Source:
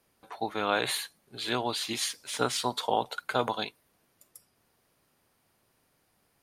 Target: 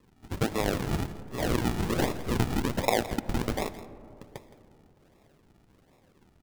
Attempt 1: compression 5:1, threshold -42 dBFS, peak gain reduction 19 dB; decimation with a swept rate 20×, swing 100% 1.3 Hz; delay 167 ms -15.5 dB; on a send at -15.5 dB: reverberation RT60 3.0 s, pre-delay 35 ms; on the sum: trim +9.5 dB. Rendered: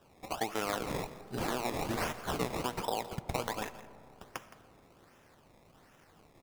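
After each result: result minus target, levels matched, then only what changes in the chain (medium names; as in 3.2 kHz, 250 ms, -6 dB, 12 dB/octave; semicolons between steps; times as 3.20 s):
decimation with a swept rate: distortion -16 dB; compression: peak gain reduction +7 dB
change: decimation with a swept rate 57×, swing 100% 1.3 Hz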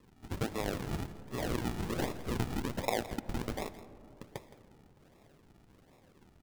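compression: peak gain reduction +7 dB
change: compression 5:1, threshold -33 dBFS, peak gain reduction 11.5 dB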